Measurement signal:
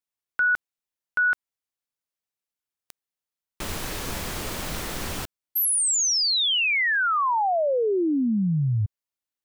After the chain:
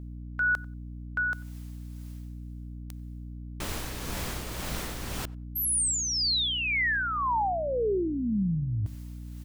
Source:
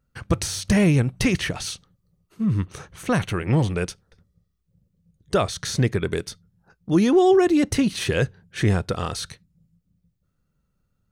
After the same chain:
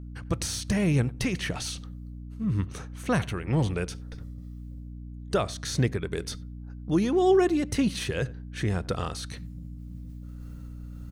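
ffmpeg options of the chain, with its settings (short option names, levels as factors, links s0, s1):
-filter_complex "[0:a]areverse,acompressor=mode=upward:threshold=0.0794:ratio=2.5:attack=0.6:release=537:knee=2.83:detection=peak,areverse,tremolo=f=1.9:d=0.42,asplit=2[s0][s1];[s1]adelay=93,lowpass=f=1800:p=1,volume=0.0891,asplit=2[s2][s3];[s3]adelay=93,lowpass=f=1800:p=1,volume=0.15[s4];[s0][s2][s4]amix=inputs=3:normalize=0,aeval=exprs='val(0)+0.0178*(sin(2*PI*60*n/s)+sin(2*PI*2*60*n/s)/2+sin(2*PI*3*60*n/s)/3+sin(2*PI*4*60*n/s)/4+sin(2*PI*5*60*n/s)/5)':c=same,volume=0.668"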